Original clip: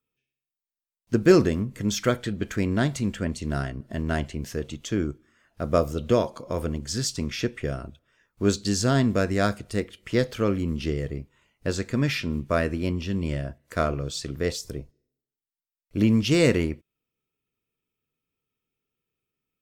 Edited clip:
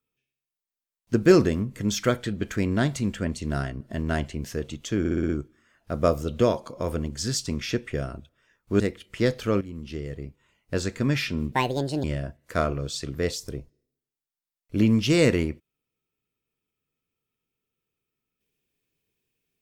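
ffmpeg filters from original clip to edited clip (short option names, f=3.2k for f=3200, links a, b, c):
-filter_complex "[0:a]asplit=10[a][b][c][d][e][f][g][h][i][j];[a]atrim=end=5.052[k];[b]atrim=start=4.988:end=5.052[l];[c]atrim=start=4.988:end=5.052[m];[d]atrim=start=4.988:end=5.052[n];[e]atrim=start=4.988:end=5.052[o];[f]atrim=start=4.988:end=8.502[p];[g]atrim=start=9.728:end=10.54,asetpts=PTS-STARTPTS,afade=t=out:st=0.808:d=0.004:c=hsin:silence=0.223872[q];[h]atrim=start=10.54:end=12.454,asetpts=PTS-STARTPTS,afade=t=in:d=1.14:silence=0.223872[r];[i]atrim=start=12.45:end=13.25,asetpts=PTS-STARTPTS,asetrate=68355,aresample=44100,atrim=end_sample=22761,asetpts=PTS-STARTPTS[s];[j]atrim=start=13.246[t];[k][l]acrossfade=d=0.004:c1=hsin:c2=hsin[u];[u][m]acrossfade=d=0.004:c1=hsin:c2=hsin[v];[v][n]acrossfade=d=0.004:c1=hsin:c2=hsin[w];[w][o]acrossfade=d=0.004:c1=hsin:c2=hsin[x];[x][p]acrossfade=d=0.004:c1=hsin:c2=hsin[y];[q][r]concat=n=2:v=0:a=1[z];[y][z]acrossfade=d=0.004:c1=hsin:c2=hsin[aa];[aa][s]acrossfade=d=0.004:c1=hsin:c2=hsin[ab];[ab][t]acrossfade=d=0.004:c1=hsin:c2=hsin"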